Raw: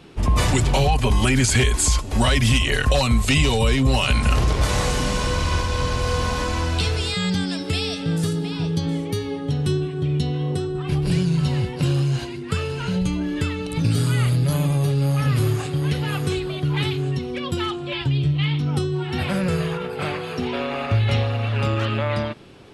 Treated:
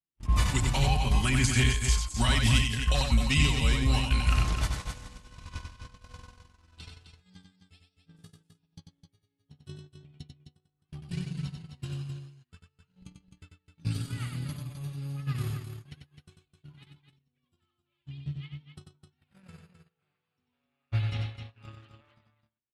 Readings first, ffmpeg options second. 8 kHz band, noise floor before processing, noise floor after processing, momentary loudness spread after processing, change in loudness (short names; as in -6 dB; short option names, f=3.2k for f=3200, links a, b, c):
-9.5 dB, -30 dBFS, -82 dBFS, 20 LU, -7.0 dB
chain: -filter_complex "[0:a]agate=range=-48dB:threshold=-17dB:ratio=16:detection=peak,equalizer=f=480:w=1.2:g=-10.5,asplit=2[a][b];[b]aecho=0:1:93.29|259.5:0.562|0.398[c];[a][c]amix=inputs=2:normalize=0,volume=-5.5dB"